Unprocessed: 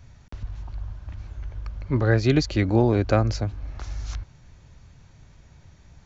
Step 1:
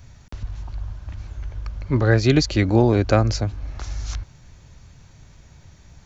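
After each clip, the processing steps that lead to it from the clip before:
high-shelf EQ 5,500 Hz +7.5 dB
level +3 dB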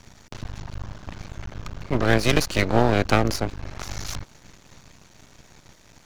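ceiling on every frequency bin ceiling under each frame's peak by 15 dB
half-wave rectification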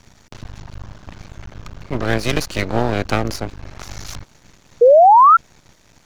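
sound drawn into the spectrogram rise, 0:04.81–0:05.37, 460–1,400 Hz −8 dBFS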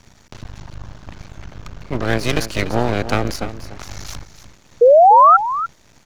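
single-tap delay 293 ms −12.5 dB

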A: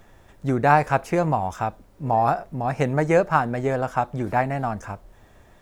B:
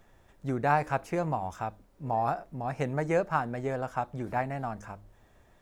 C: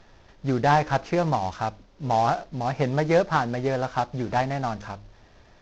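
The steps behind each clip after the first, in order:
hum removal 102.3 Hz, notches 3; level −8.5 dB
variable-slope delta modulation 32 kbit/s; level +7 dB

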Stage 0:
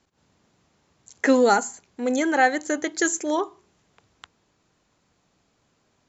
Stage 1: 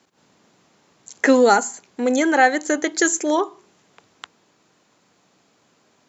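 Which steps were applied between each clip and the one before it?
high-pass filter 180 Hz 12 dB per octave
in parallel at −1.5 dB: downward compressor, threshold −30 dBFS, peak gain reduction 16 dB
on the sum: level +2.5 dB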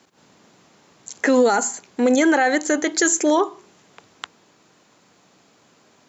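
brickwall limiter −13 dBFS, peak gain reduction 11 dB
level +4.5 dB

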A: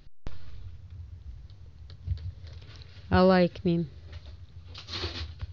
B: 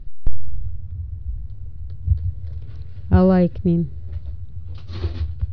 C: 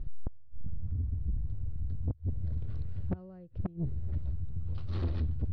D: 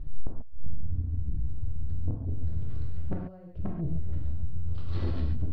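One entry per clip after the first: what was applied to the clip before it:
spectral tilt −4 dB per octave; level −1 dB
gate with flip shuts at −10 dBFS, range −34 dB; soft clipping −26.5 dBFS, distortion −8 dB; high-shelf EQ 2,500 Hz −12 dB
convolution reverb, pre-delay 3 ms, DRR −1 dB

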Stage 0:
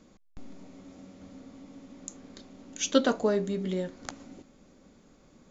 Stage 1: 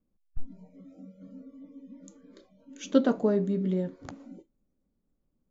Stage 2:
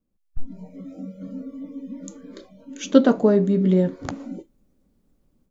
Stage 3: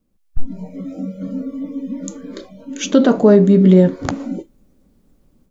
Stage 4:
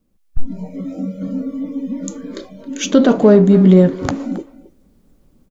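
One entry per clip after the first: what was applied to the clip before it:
noise reduction from a noise print of the clip's start 25 dB; spectral tilt −3.5 dB per octave; level −4 dB
automatic gain control gain up to 12.5 dB
boost into a limiter +10 dB; level −1 dB
far-end echo of a speakerphone 270 ms, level −16 dB; in parallel at −10 dB: soft clipping −17.5 dBFS, distortion −5 dB

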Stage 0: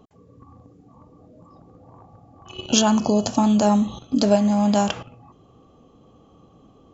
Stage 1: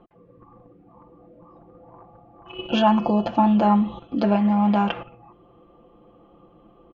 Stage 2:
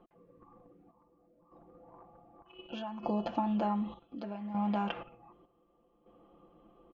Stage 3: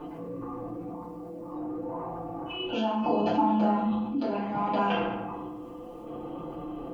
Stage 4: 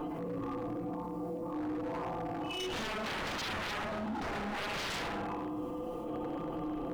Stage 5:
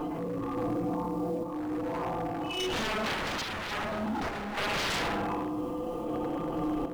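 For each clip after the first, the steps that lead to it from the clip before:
low-pass filter 2,700 Hz 24 dB per octave; parametric band 150 Hz −9.5 dB 0.72 octaves; comb filter 5.8 ms, depth 82%
parametric band 100 Hz −9.5 dB 0.76 octaves; downward compressor 6 to 1, threshold −20 dBFS, peak gain reduction 8 dB; square-wave tremolo 0.66 Hz, depth 65%, duty 60%; level −8 dB
flanger 0.45 Hz, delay 6.6 ms, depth 4.1 ms, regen −50%; feedback delay network reverb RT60 0.73 s, low-frequency decay 1.25×, high-frequency decay 0.65×, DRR −8.5 dB; envelope flattener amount 50%
wave folding −31 dBFS; echo ahead of the sound 62 ms −13 dB; brickwall limiter −36 dBFS, peak gain reduction 6.5 dB; level +5 dB
in parallel at −11.5 dB: floating-point word with a short mantissa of 2 bits; on the sum: sample-and-hold tremolo; level +5 dB

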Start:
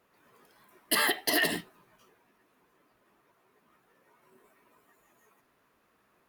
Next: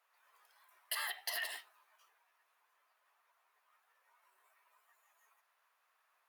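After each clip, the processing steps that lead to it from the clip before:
high-pass filter 740 Hz 24 dB per octave
downward compressor 5 to 1, threshold −31 dBFS, peak gain reduction 8 dB
level −5.5 dB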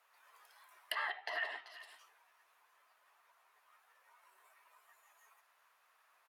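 single-tap delay 385 ms −19.5 dB
treble cut that deepens with the level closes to 1,800 Hz, closed at −41 dBFS
level +5.5 dB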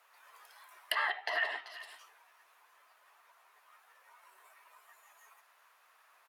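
high-pass filter 190 Hz
level +6 dB

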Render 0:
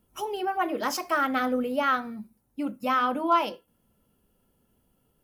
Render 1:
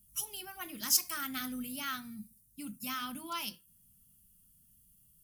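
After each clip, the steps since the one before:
drawn EQ curve 170 Hz 0 dB, 490 Hz −29 dB, 9,100 Hz +12 dB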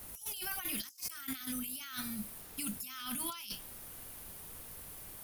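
guitar amp tone stack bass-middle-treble 5-5-5
background noise pink −76 dBFS
compressor whose output falls as the input rises −57 dBFS, ratio −1
level +13 dB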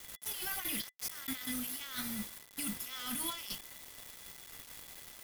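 bit reduction 7 bits
hollow resonant body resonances 2,000/3,400 Hz, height 15 dB, ringing for 95 ms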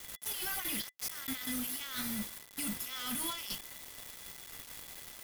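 gain into a clipping stage and back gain 34.5 dB
level +2.5 dB

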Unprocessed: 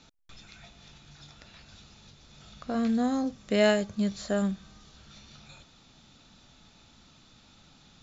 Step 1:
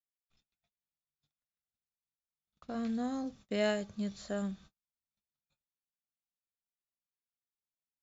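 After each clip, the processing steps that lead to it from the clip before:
noise gate −45 dBFS, range −46 dB
level −8.5 dB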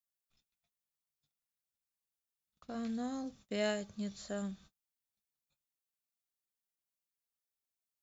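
high-shelf EQ 5,600 Hz +8 dB
level −3.5 dB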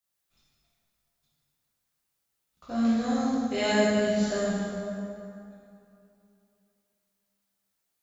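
dense smooth reverb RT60 2.8 s, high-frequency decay 0.6×, DRR −9.5 dB
level +3.5 dB

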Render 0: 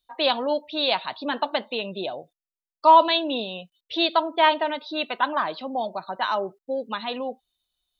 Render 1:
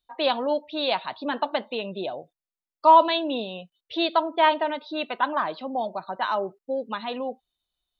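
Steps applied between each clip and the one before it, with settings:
high-shelf EQ 3,000 Hz −7.5 dB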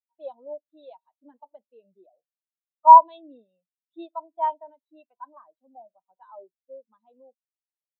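every bin expanded away from the loudest bin 2.5 to 1
level +4.5 dB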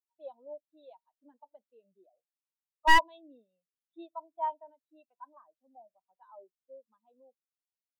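wavefolder on the positive side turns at −12 dBFS
level −7.5 dB

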